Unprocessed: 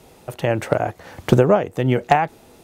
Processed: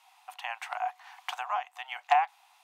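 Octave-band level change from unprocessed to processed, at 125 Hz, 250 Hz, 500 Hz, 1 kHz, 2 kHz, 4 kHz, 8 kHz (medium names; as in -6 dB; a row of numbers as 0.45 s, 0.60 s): under -40 dB, under -40 dB, -22.0 dB, -6.5 dB, -8.0 dB, -6.0 dB, -12.0 dB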